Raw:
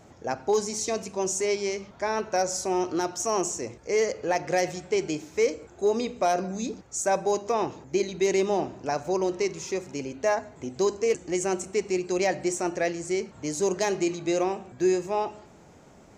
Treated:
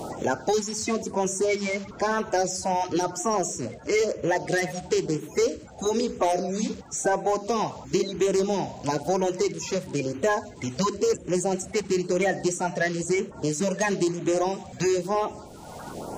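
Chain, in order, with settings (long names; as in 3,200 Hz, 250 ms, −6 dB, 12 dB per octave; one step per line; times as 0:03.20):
spectral magnitudes quantised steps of 30 dB
auto-filter notch sine 1 Hz 320–4,900 Hz
in parallel at −7 dB: gain into a clipping stage and back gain 24 dB
on the sum: multiband upward and downward compressor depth 70%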